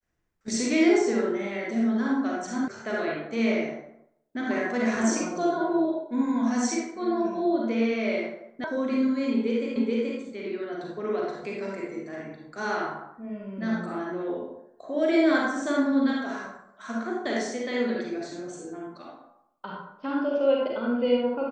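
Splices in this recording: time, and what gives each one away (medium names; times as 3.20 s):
2.68 s: sound stops dead
8.64 s: sound stops dead
9.76 s: repeat of the last 0.43 s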